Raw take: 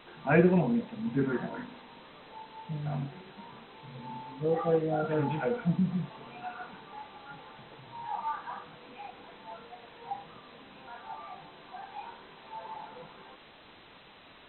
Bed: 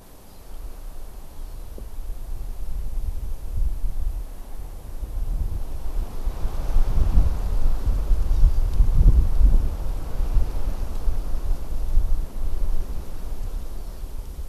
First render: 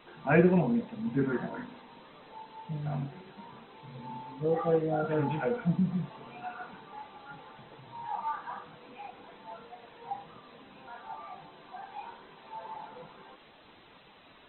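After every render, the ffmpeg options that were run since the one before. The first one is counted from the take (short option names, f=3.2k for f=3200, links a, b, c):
-af "afftdn=nr=6:nf=-54"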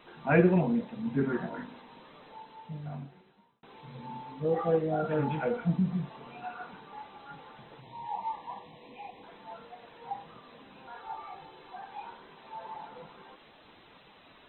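-filter_complex "[0:a]asettb=1/sr,asplit=3[a][b][c];[a]atrim=end=7.814[d];[b]atrim=start=7.81:end=9.23,asetpts=PTS-STARTPTS,afade=t=in:d=0.004:c=qsin,afade=t=out:st=1.416:d=0.004:c=qsin,asuperstop=centerf=1400:order=12:qfactor=2.2[e];[c]atrim=start=9.226[f];[d][e]acrossfade=d=0.004:c1=hsin:c2=qsin[g];[g][f]acrossfade=d=0.004:c1=qsin:c2=hsin,asettb=1/sr,asplit=3[h][i][j];[h]atrim=end=10.944[k];[i]atrim=start=10.94:end=11.74,asetpts=PTS-STARTPTS,afade=t=in:d=0.004:c=qsin,afade=t=out:st=0.796:d=0.004:c=qsin,aecho=1:1:2.3:0.49,atrim=end_sample=35280[l];[j]atrim=start=11.736[m];[k][l]acrossfade=d=0.004:c1=hsin:c2=qsin[n];[n][m]acrossfade=d=0.004:c1=qsin:c2=hsin,asplit=2[o][p];[o]atrim=end=3.63,asetpts=PTS-STARTPTS,afade=t=out:st=2.24:d=1.39[q];[p]atrim=start=3.63,asetpts=PTS-STARTPTS,afade=t=in:d=0.004:c=hsin[r];[q][r]concat=n=2:v=0:a=1"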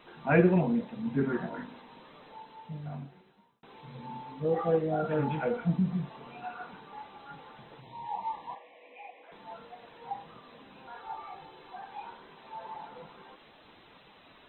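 -filter_complex "[0:a]asettb=1/sr,asplit=3[a][b][c];[a]atrim=end=8.554[d];[b]atrim=start=8.55:end=9.32,asetpts=PTS-STARTPTS,afade=t=in:d=0.004:c=qsin,afade=t=out:st=0.766:d=0.004:c=qsin,highpass=f=370:w=0.5412,highpass=f=370:w=1.3066,equalizer=f=390:t=q:w=4:g=-9,equalizer=f=580:t=q:w=4:g=4,equalizer=f=940:t=q:w=4:g=-9,equalizer=f=1.3k:t=q:w=4:g=-3,equalizer=f=2.3k:t=q:w=4:g=5,lowpass=f=2.8k:w=0.5412,lowpass=f=2.8k:w=1.3066[e];[c]atrim=start=9.316[f];[d][e]acrossfade=d=0.004:c1=hsin:c2=qsin[g];[g][f]acrossfade=d=0.004:c1=qsin:c2=hsin"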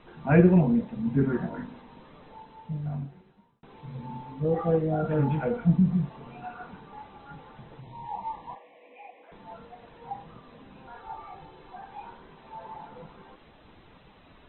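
-af "aemphasis=mode=reproduction:type=bsi"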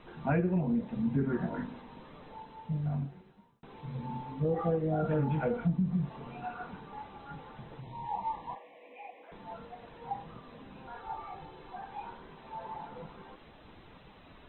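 -af "acompressor=threshold=-26dB:ratio=6"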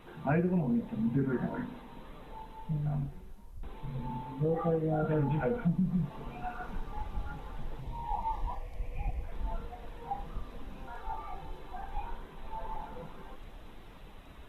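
-filter_complex "[1:a]volume=-20.5dB[a];[0:a][a]amix=inputs=2:normalize=0"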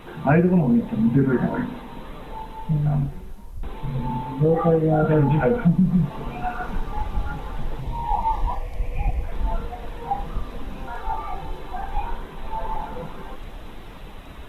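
-af "volume=11.5dB"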